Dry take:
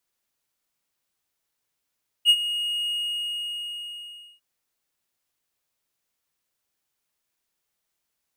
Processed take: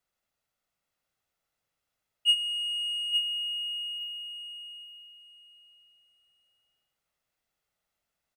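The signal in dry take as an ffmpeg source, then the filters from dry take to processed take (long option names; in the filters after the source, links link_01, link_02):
-f lavfi -i "aevalsrc='0.355*(1-4*abs(mod(2870*t+0.25,1)-0.5))':duration=2.15:sample_rate=44100,afade=type=in:duration=0.047,afade=type=out:start_time=0.047:duration=0.056:silence=0.211,afade=type=out:start_time=0.64:duration=1.51"
-filter_complex "[0:a]highshelf=frequency=3600:gain=-10,aecho=1:1:1.5:0.38,asplit=2[link_01][link_02];[link_02]aecho=0:1:863|1726|2589:0.501|0.115|0.0265[link_03];[link_01][link_03]amix=inputs=2:normalize=0"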